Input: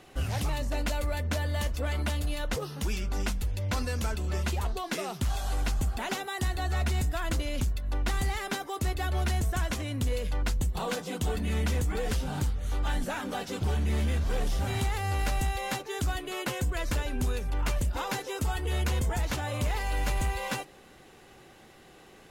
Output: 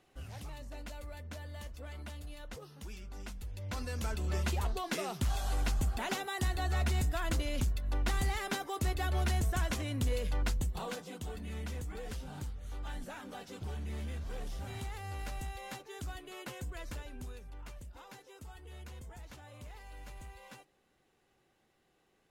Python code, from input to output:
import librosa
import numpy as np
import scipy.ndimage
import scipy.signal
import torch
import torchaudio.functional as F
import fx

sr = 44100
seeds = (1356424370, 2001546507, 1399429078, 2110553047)

y = fx.gain(x, sr, db=fx.line((3.21, -15.0), (4.27, -3.0), (10.44, -3.0), (11.25, -12.0), (16.81, -12.0), (17.79, -20.0)))